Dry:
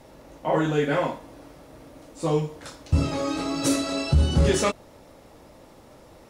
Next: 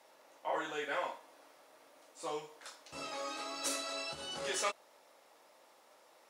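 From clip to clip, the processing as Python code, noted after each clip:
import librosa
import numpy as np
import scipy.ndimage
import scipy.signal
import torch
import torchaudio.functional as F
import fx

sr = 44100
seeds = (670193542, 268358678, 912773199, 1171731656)

y = scipy.signal.sosfilt(scipy.signal.butter(2, 730.0, 'highpass', fs=sr, output='sos'), x)
y = y * librosa.db_to_amplitude(-8.0)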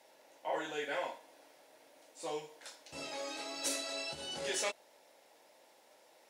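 y = fx.peak_eq(x, sr, hz=1200.0, db=-12.0, octaves=0.36)
y = y * librosa.db_to_amplitude(1.0)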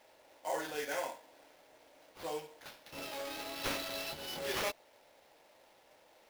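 y = fx.sample_hold(x, sr, seeds[0], rate_hz=8100.0, jitter_pct=20)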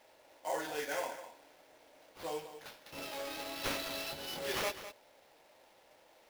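y = x + 10.0 ** (-12.5 / 20.0) * np.pad(x, (int(204 * sr / 1000.0), 0))[:len(x)]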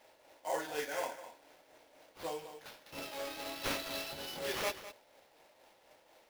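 y = fx.tremolo_shape(x, sr, shape='triangle', hz=4.1, depth_pct=45)
y = y * librosa.db_to_amplitude(1.5)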